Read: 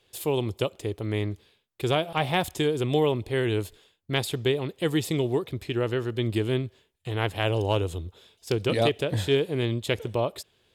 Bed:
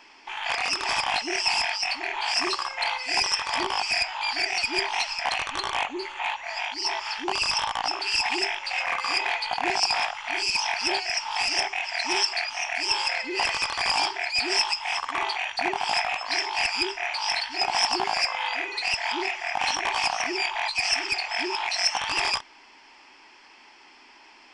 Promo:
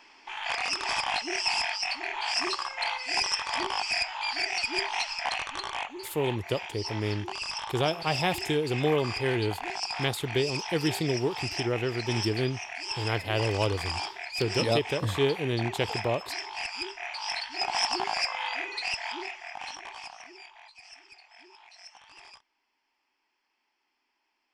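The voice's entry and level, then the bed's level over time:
5.90 s, -2.5 dB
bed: 5.25 s -3.5 dB
6.19 s -9.5 dB
16.72 s -9.5 dB
17.77 s -4 dB
18.79 s -4 dB
20.80 s -26 dB

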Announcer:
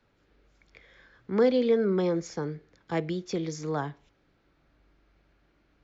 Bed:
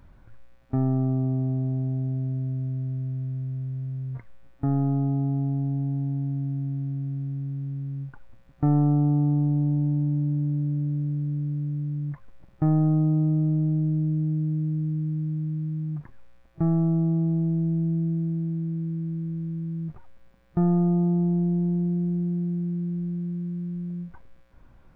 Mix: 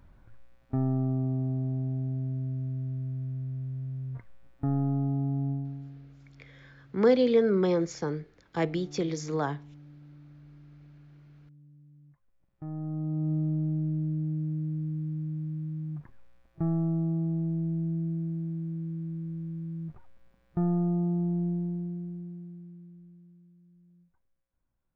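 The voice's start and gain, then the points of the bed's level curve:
5.65 s, +1.0 dB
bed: 5.51 s -4 dB
6.17 s -26.5 dB
12.15 s -26.5 dB
13.32 s -5.5 dB
21.48 s -5.5 dB
23.56 s -28 dB

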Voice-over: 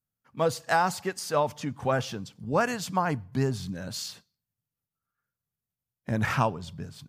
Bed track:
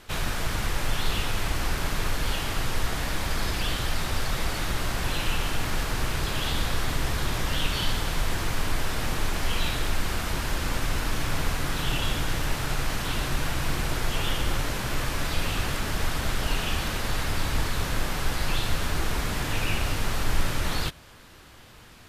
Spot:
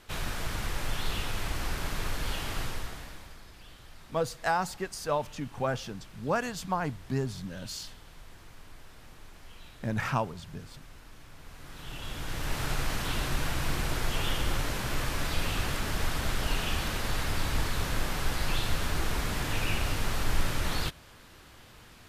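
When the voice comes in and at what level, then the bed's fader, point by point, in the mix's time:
3.75 s, -4.0 dB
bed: 2.62 s -5.5 dB
3.44 s -23.5 dB
11.37 s -23.5 dB
12.61 s -3 dB

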